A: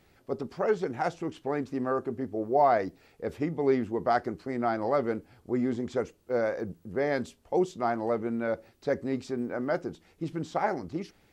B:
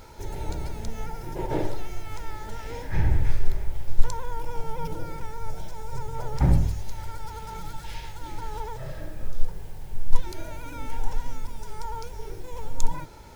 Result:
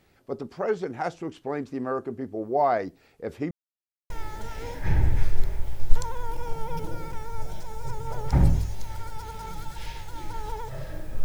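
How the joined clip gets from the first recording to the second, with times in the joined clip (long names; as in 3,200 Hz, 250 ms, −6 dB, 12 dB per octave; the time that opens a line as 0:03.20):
A
0:03.51–0:04.10: silence
0:04.10: continue with B from 0:02.18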